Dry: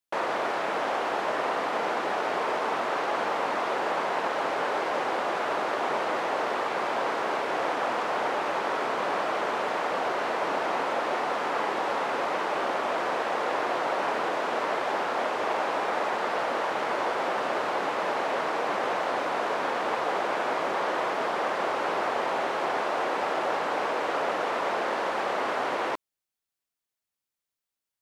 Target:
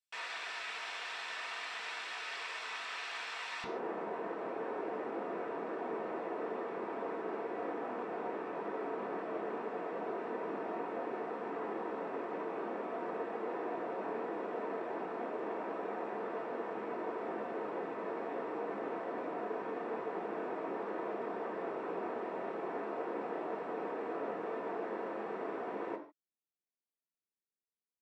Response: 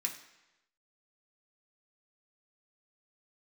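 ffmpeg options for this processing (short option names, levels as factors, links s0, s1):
-filter_complex "[0:a]asetnsamples=n=441:p=0,asendcmd='3.64 bandpass f 330',bandpass=f=3900:t=q:w=1.3:csg=0[s0];[1:a]atrim=start_sample=2205,afade=t=out:st=0.21:d=0.01,atrim=end_sample=9702[s1];[s0][s1]afir=irnorm=-1:irlink=0,volume=0.794"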